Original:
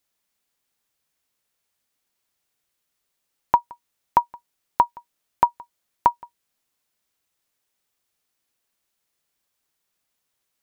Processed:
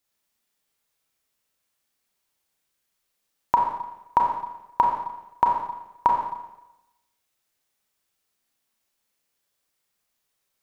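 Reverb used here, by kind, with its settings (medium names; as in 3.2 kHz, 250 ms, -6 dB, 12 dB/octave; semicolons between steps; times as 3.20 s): Schroeder reverb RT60 0.96 s, combs from 29 ms, DRR 0 dB; trim -2.5 dB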